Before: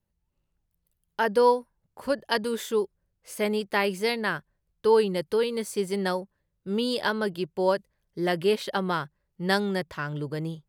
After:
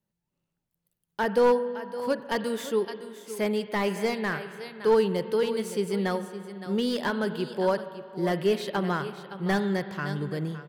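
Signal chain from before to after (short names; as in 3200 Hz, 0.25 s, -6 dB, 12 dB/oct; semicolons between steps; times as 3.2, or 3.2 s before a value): resonant low shelf 100 Hz -13 dB, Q 1.5; echo 0.564 s -13.5 dB; spring tank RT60 2.4 s, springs 41/45 ms, chirp 50 ms, DRR 12 dB; slew limiter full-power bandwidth 120 Hz; gain -1.5 dB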